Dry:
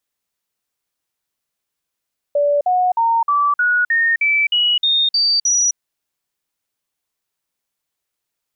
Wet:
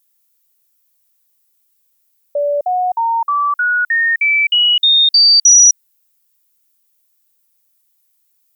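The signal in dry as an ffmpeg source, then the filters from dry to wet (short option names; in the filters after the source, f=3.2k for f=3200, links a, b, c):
-f lavfi -i "aevalsrc='0.237*clip(min(mod(t,0.31),0.26-mod(t,0.31))/0.005,0,1)*sin(2*PI*579*pow(2,floor(t/0.31)/3)*mod(t,0.31))':d=3.41:s=44100"
-af "aemphasis=mode=production:type=75fm"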